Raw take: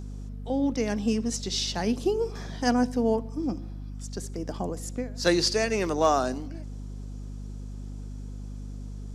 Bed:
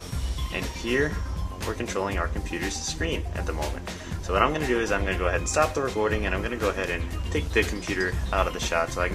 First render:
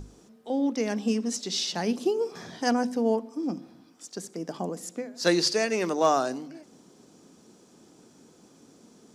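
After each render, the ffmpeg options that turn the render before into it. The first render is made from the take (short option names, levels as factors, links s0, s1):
-af "bandreject=f=50:t=h:w=6,bandreject=f=100:t=h:w=6,bandreject=f=150:t=h:w=6,bandreject=f=200:t=h:w=6,bandreject=f=250:t=h:w=6"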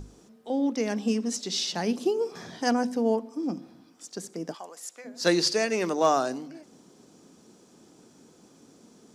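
-filter_complex "[0:a]asplit=3[s0][s1][s2];[s0]afade=t=out:st=4.53:d=0.02[s3];[s1]highpass=1000,afade=t=in:st=4.53:d=0.02,afade=t=out:st=5.04:d=0.02[s4];[s2]afade=t=in:st=5.04:d=0.02[s5];[s3][s4][s5]amix=inputs=3:normalize=0"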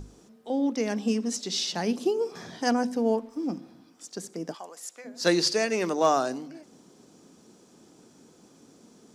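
-filter_complex "[0:a]asettb=1/sr,asplit=3[s0][s1][s2];[s0]atrim=end=2.954[s3];[s1]atrim=start=2.95:end=3.61,asetpts=PTS-STARTPTS,afade=t=in:d=0.004:c=qsin,afade=t=out:st=0.656:d=0.004:c=qsin,aeval=exprs='sgn(val(0))*max(abs(val(0))-0.00126,0)':c=same[s4];[s2]atrim=start=3.606[s5];[s3][s4]acrossfade=d=0.004:c1=hsin:c2=qsin[s6];[s6][s5]acrossfade=d=0.004:c1=qsin:c2=hsin"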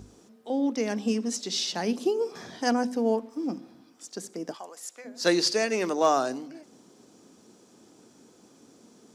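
-af "highpass=74,equalizer=f=160:t=o:w=0.3:g=-6.5"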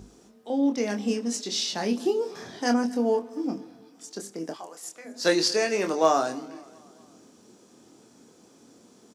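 -filter_complex "[0:a]asplit=2[s0][s1];[s1]adelay=25,volume=0.501[s2];[s0][s2]amix=inputs=2:normalize=0,aecho=1:1:236|472|708|944:0.0708|0.0389|0.0214|0.0118"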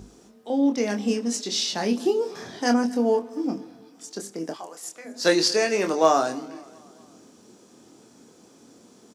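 -af "volume=1.33"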